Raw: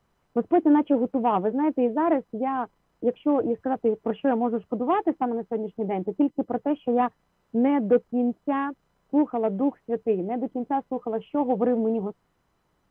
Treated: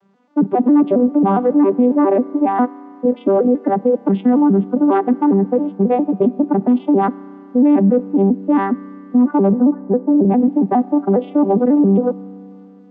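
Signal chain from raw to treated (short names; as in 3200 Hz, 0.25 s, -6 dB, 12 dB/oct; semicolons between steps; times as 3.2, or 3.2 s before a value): arpeggiated vocoder major triad, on G3, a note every 0.136 s; 9.54–10.25 steep low-pass 1700 Hz 72 dB/oct; in parallel at -1 dB: negative-ratio compressor -30 dBFS, ratio -1; on the sum: spring tank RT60 3 s, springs 31 ms, chirp 30 ms, DRR 19.5 dB; maximiser +14.5 dB; gain -5 dB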